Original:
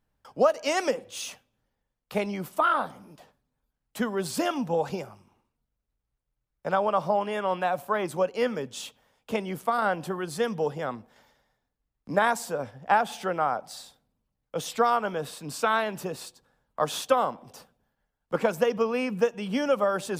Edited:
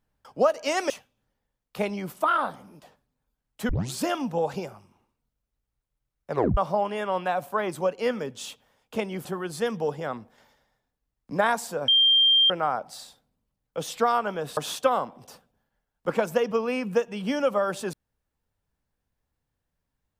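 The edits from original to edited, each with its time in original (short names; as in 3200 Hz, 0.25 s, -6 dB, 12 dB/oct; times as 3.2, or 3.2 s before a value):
0.9–1.26 cut
4.05 tape start 0.25 s
6.67 tape stop 0.26 s
9.61–10.03 cut
12.66–13.28 bleep 3180 Hz -15.5 dBFS
15.35–16.83 cut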